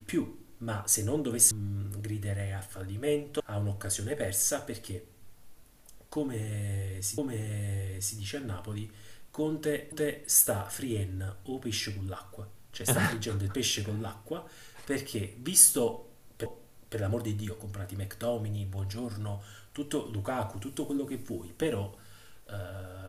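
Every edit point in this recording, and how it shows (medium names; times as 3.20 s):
1.51 s: sound stops dead
3.40 s: sound stops dead
7.18 s: repeat of the last 0.99 s
9.92 s: repeat of the last 0.34 s
16.46 s: repeat of the last 0.52 s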